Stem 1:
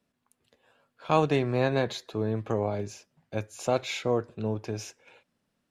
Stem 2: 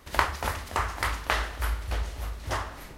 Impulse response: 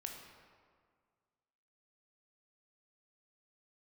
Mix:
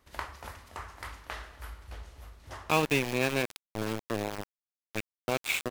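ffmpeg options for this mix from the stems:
-filter_complex "[0:a]equalizer=f=630:t=o:w=0.67:g=-4,equalizer=f=2.5k:t=o:w=0.67:g=12,equalizer=f=10k:t=o:w=0.67:g=-11,aeval=exprs='val(0)*gte(abs(val(0)),0.0562)':c=same,adelay=1600,volume=-2.5dB[a];[1:a]volume=-16dB,asplit=2[b][c];[c]volume=-5.5dB[d];[2:a]atrim=start_sample=2205[e];[d][e]afir=irnorm=-1:irlink=0[f];[a][b][f]amix=inputs=3:normalize=0"

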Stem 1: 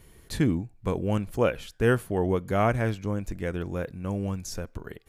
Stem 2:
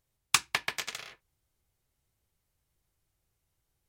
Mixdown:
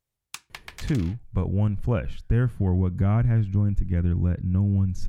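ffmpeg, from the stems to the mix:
-filter_complex "[0:a]lowpass=f=2.1k:p=1,asubboost=boost=11:cutoff=170,acompressor=threshold=-17dB:ratio=6,adelay=500,volume=-1dB[a];[1:a]acompressor=threshold=-30dB:ratio=10,volume=-4.5dB[b];[a][b]amix=inputs=2:normalize=0"

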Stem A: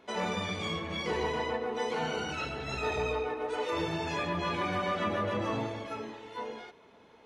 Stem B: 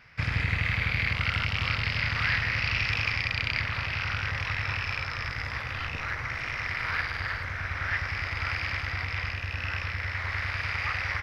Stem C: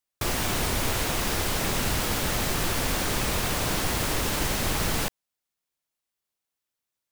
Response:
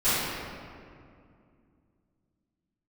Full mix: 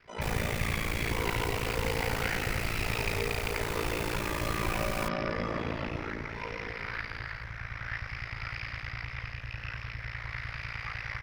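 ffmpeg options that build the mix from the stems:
-filter_complex "[0:a]volume=-13.5dB,asplit=2[a][b];[b]volume=-3.5dB[c];[1:a]volume=-5dB[d];[2:a]volume=-10dB[e];[3:a]atrim=start_sample=2205[f];[c][f]afir=irnorm=-1:irlink=0[g];[a][d][e][g]amix=inputs=4:normalize=0,lowshelf=f=62:g=7.5,aeval=exprs='val(0)*sin(2*PI*28*n/s)':c=same"

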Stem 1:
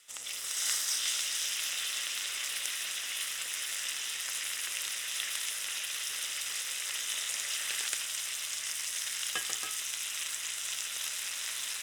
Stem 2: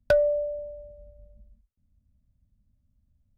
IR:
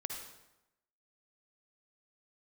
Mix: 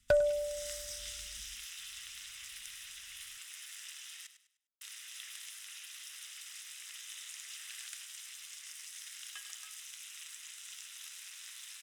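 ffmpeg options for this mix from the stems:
-filter_complex "[0:a]highpass=1.3k,volume=-12.5dB,asplit=3[a][b][c];[a]atrim=end=4.27,asetpts=PTS-STARTPTS,afade=t=out:st=4.266:d=0.004:c=hsin[d];[b]atrim=start=4.27:end=4.81,asetpts=PTS-STARTPTS,volume=0[e];[c]atrim=start=4.81,asetpts=PTS-STARTPTS,afade=t=in:d=0.004:c=hsin[f];[d][e][f]concat=n=3:v=0:a=1,asplit=2[g][h];[h]volume=-11.5dB[i];[1:a]volume=-6dB,asplit=2[j][k];[k]volume=-16dB[l];[i][l]amix=inputs=2:normalize=0,aecho=0:1:101|202|303|404:1|0.31|0.0961|0.0298[m];[g][j][m]amix=inputs=3:normalize=0"

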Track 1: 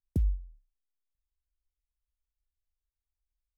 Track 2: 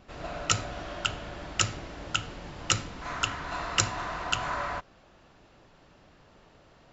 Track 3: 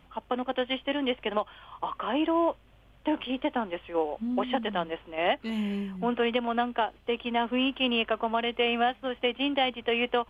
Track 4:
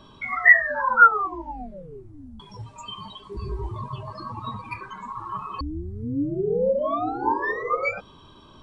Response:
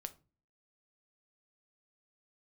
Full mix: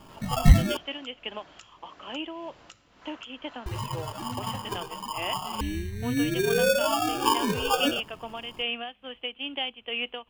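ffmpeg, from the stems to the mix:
-filter_complex "[1:a]highpass=f=270:p=1,acompressor=threshold=-38dB:ratio=16,volume=-9.5dB[a];[2:a]equalizer=f=2.9k:t=o:w=0.58:g=12,tremolo=f=2.3:d=0.46,volume=-10.5dB,asplit=2[b][c];[c]volume=-13.5dB[d];[3:a]acrusher=samples=22:mix=1:aa=0.000001,volume=-1.5dB,asplit=3[e][f][g];[e]atrim=end=0.77,asetpts=PTS-STARTPTS,afade=t=out:st=0.766:d=0.004:c=hsin[h];[f]atrim=start=0.77:end=3.66,asetpts=PTS-STARTPTS,volume=0[i];[g]atrim=start=3.66,asetpts=PTS-STARTPTS,afade=t=in:d=0.004:c=hsin[j];[h][i][j]concat=n=3:v=0:a=1,asplit=2[k][l];[l]volume=-13dB[m];[4:a]atrim=start_sample=2205[n];[d][m]amix=inputs=2:normalize=0[o];[o][n]afir=irnorm=-1:irlink=0[p];[a][b][k][p]amix=inputs=4:normalize=0"

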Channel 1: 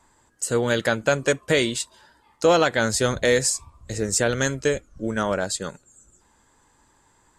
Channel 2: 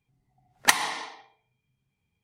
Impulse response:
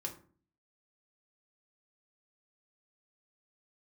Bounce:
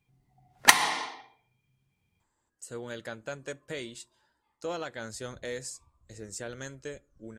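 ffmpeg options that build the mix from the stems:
-filter_complex "[0:a]adelay=2200,volume=-18.5dB,asplit=2[a][b];[b]volume=-17dB[c];[1:a]volume=0dB,asplit=2[d][e];[e]volume=-8dB[f];[2:a]atrim=start_sample=2205[g];[c][f]amix=inputs=2:normalize=0[h];[h][g]afir=irnorm=-1:irlink=0[i];[a][d][i]amix=inputs=3:normalize=0"

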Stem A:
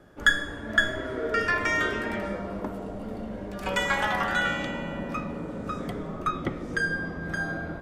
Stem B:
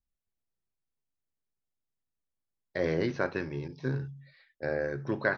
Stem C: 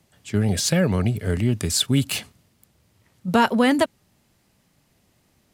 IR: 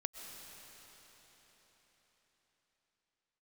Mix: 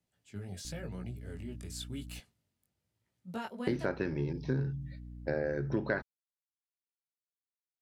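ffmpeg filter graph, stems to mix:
-filter_complex "[1:a]equalizer=f=200:w=0.47:g=6,agate=range=-33dB:threshold=-51dB:ratio=16:detection=peak,aeval=exprs='val(0)+0.00501*(sin(2*PI*60*n/s)+sin(2*PI*2*60*n/s)/2+sin(2*PI*3*60*n/s)/3+sin(2*PI*4*60*n/s)/4+sin(2*PI*5*60*n/s)/5)':c=same,adelay=650,volume=1.5dB,asplit=3[a][b][c];[a]atrim=end=2.2,asetpts=PTS-STARTPTS,afade=t=out:st=2.196:d=0.004:c=hsin[d];[b]atrim=start=2.2:end=3.67,asetpts=PTS-STARTPTS,volume=0[e];[c]atrim=start=3.67,asetpts=PTS-STARTPTS,afade=t=in:d=0.004:c=hsin[f];[d][e][f]concat=n=3:v=0:a=1[g];[2:a]flanger=delay=16.5:depth=4.9:speed=0.94,volume=-18.5dB[h];[g][h]amix=inputs=2:normalize=0,bandreject=f=1.1k:w=13,acompressor=threshold=-31dB:ratio=2.5"

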